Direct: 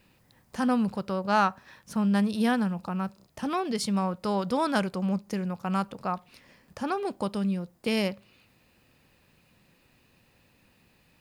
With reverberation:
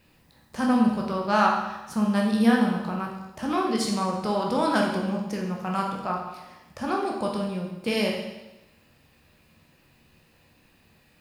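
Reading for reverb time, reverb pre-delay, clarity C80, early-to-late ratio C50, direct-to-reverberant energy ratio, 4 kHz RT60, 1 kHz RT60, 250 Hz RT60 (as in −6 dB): 1.0 s, 13 ms, 6.0 dB, 3.5 dB, −1.0 dB, 0.95 s, 1.0 s, 1.0 s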